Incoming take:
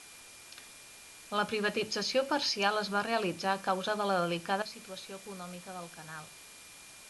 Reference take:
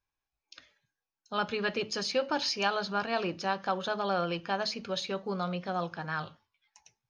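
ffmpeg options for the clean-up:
ffmpeg -i in.wav -af "bandreject=frequency=2400:width=30,afwtdn=0.0032,asetnsamples=nb_out_samples=441:pad=0,asendcmd='4.62 volume volume 11dB',volume=0dB" out.wav

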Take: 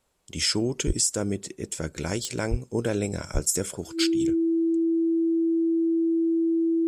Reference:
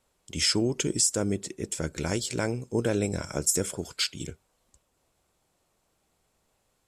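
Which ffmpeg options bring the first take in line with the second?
ffmpeg -i in.wav -filter_complex "[0:a]adeclick=threshold=4,bandreject=frequency=330:width=30,asplit=3[link_01][link_02][link_03];[link_01]afade=type=out:start_time=0.86:duration=0.02[link_04];[link_02]highpass=frequency=140:width=0.5412,highpass=frequency=140:width=1.3066,afade=type=in:start_time=0.86:duration=0.02,afade=type=out:start_time=0.98:duration=0.02[link_05];[link_03]afade=type=in:start_time=0.98:duration=0.02[link_06];[link_04][link_05][link_06]amix=inputs=3:normalize=0,asplit=3[link_07][link_08][link_09];[link_07]afade=type=out:start_time=2.5:duration=0.02[link_10];[link_08]highpass=frequency=140:width=0.5412,highpass=frequency=140:width=1.3066,afade=type=in:start_time=2.5:duration=0.02,afade=type=out:start_time=2.62:duration=0.02[link_11];[link_09]afade=type=in:start_time=2.62:duration=0.02[link_12];[link_10][link_11][link_12]amix=inputs=3:normalize=0,asplit=3[link_13][link_14][link_15];[link_13]afade=type=out:start_time=3.33:duration=0.02[link_16];[link_14]highpass=frequency=140:width=0.5412,highpass=frequency=140:width=1.3066,afade=type=in:start_time=3.33:duration=0.02,afade=type=out:start_time=3.45:duration=0.02[link_17];[link_15]afade=type=in:start_time=3.45:duration=0.02[link_18];[link_16][link_17][link_18]amix=inputs=3:normalize=0" out.wav

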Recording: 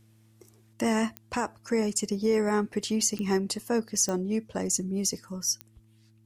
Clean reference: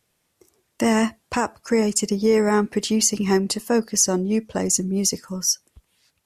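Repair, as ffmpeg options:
ffmpeg -i in.wav -af "adeclick=threshold=4,bandreject=frequency=110:width_type=h:width=4,bandreject=frequency=220:width_type=h:width=4,bandreject=frequency=330:width_type=h:width=4,asetnsamples=nb_out_samples=441:pad=0,asendcmd='0.73 volume volume 7dB',volume=0dB" out.wav

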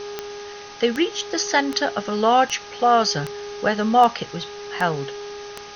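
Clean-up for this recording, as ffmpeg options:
ffmpeg -i in.wav -af "adeclick=threshold=4,bandreject=frequency=410.6:width_type=h:width=4,bandreject=frequency=821.2:width_type=h:width=4,bandreject=frequency=1231.8:width_type=h:width=4,bandreject=frequency=1642.4:width_type=h:width=4,bandreject=frequency=410:width=30,afftdn=noise_reduction=27:noise_floor=-37" out.wav

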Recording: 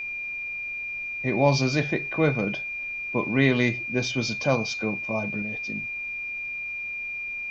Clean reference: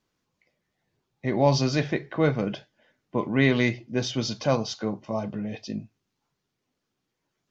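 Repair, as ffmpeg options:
ffmpeg -i in.wav -af "bandreject=frequency=2400:width=30,agate=range=-21dB:threshold=-25dB,asetnsamples=nb_out_samples=441:pad=0,asendcmd='5.42 volume volume 4dB',volume=0dB" out.wav

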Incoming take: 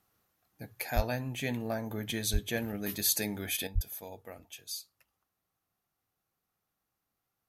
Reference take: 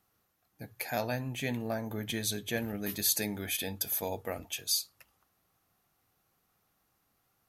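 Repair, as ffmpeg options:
ffmpeg -i in.wav -filter_complex "[0:a]asplit=3[link_01][link_02][link_03];[link_01]afade=type=out:start_time=0.95:duration=0.02[link_04];[link_02]highpass=frequency=140:width=0.5412,highpass=frequency=140:width=1.3066,afade=type=in:start_time=0.95:duration=0.02,afade=type=out:start_time=1.07:duration=0.02[link_05];[link_03]afade=type=in:start_time=1.07:duration=0.02[link_06];[link_04][link_05][link_06]amix=inputs=3:normalize=0,asplit=3[link_07][link_08][link_09];[link_07]afade=type=out:start_time=2.32:duration=0.02[link_10];[link_08]highpass=frequency=140:width=0.5412,highpass=frequency=140:width=1.3066,afade=type=in:start_time=2.32:duration=0.02,afade=type=out:start_time=2.44:duration=0.02[link_11];[link_09]afade=type=in:start_time=2.44:duration=0.02[link_12];[link_10][link_11][link_12]amix=inputs=3:normalize=0,asplit=3[link_13][link_14][link_15];[link_13]afade=type=out:start_time=3.74:duration=0.02[link_16];[link_14]highpass=frequency=140:width=0.5412,highpass=frequency=140:width=1.3066,afade=type=in:start_time=3.74:duration=0.02,afade=type=out:start_time=3.86:duration=0.02[link_17];[link_15]afade=type=in:start_time=3.86:duration=0.02[link_18];[link_16][link_17][link_18]amix=inputs=3:normalize=0,asetnsamples=nb_out_samples=441:pad=0,asendcmd='3.67 volume volume 10dB',volume=0dB" out.wav

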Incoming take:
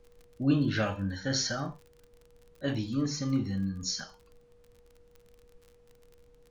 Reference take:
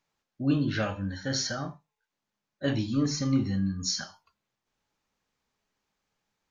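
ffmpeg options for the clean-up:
ffmpeg -i in.wav -af "adeclick=threshold=4,bandreject=frequency=480:width=30,agate=range=-21dB:threshold=-52dB,asetnsamples=nb_out_samples=441:pad=0,asendcmd='2.2 volume volume 3.5dB',volume=0dB" out.wav

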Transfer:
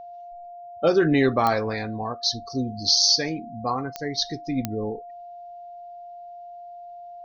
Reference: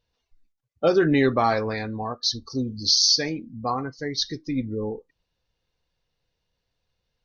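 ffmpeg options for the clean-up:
ffmpeg -i in.wav -af "adeclick=threshold=4,bandreject=frequency=700:width=30" out.wav

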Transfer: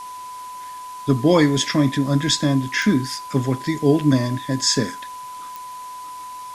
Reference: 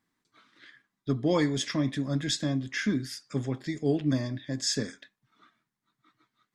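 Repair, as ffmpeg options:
ffmpeg -i in.wav -af "adeclick=threshold=4,bandreject=frequency=1000:width=30,afwtdn=0.0063,asetnsamples=nb_out_samples=441:pad=0,asendcmd='0.96 volume volume -10dB',volume=0dB" out.wav

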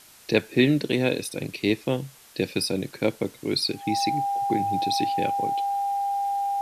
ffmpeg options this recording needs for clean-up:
ffmpeg -i in.wav -af "bandreject=frequency=800:width=30,afwtdn=0.0032" out.wav

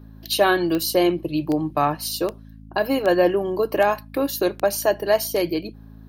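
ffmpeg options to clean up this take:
ffmpeg -i in.wav -af "adeclick=threshold=4,bandreject=frequency=53.9:width_type=h:width=4,bandreject=frequency=107.8:width_type=h:width=4,bandreject=frequency=161.7:width_type=h:width=4,bandreject=frequency=215.6:width_type=h:width=4,bandreject=frequency=269.5:width_type=h:width=4" out.wav

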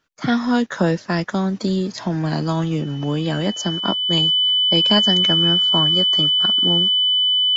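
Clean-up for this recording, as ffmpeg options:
ffmpeg -i in.wav -af "bandreject=frequency=3000:width=30" out.wav

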